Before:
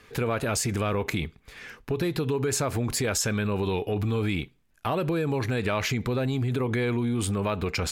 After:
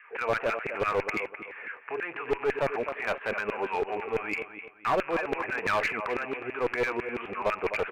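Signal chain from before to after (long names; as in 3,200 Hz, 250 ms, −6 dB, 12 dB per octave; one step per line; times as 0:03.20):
loose part that buzzes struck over −33 dBFS, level −34 dBFS
Butterworth low-pass 2,700 Hz 72 dB per octave
auto-filter high-pass saw down 6 Hz 400–2,000 Hz
on a send: repeating echo 256 ms, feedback 29%, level −11 dB
on the sum: asymmetric clip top −25 dBFS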